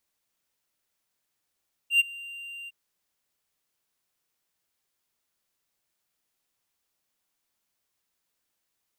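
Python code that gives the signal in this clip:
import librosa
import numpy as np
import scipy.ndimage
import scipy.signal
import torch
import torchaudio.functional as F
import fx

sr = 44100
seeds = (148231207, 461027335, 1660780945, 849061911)

y = fx.adsr_tone(sr, wave='triangle', hz=2780.0, attack_ms=99.0, decay_ms=21.0, sustain_db=-22.5, held_s=0.78, release_ms=29.0, level_db=-13.0)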